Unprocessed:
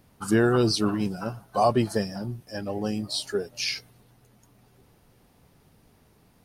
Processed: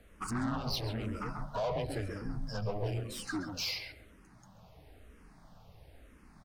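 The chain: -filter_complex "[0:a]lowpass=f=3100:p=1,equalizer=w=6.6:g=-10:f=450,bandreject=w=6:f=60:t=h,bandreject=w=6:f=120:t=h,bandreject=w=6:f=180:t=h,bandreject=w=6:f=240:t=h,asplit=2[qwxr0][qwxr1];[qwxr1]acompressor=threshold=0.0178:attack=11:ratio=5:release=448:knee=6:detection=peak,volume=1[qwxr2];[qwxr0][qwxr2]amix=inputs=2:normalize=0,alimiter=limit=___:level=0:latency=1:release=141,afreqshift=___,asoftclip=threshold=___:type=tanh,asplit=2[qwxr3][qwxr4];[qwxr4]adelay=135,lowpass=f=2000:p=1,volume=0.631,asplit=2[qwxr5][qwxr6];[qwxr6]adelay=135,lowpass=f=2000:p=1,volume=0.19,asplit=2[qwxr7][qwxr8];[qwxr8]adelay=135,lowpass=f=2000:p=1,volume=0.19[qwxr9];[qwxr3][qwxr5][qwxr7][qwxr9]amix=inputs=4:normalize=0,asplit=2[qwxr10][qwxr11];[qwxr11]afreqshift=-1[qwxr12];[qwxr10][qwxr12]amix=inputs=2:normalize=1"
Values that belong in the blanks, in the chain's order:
0.168, -93, 0.0355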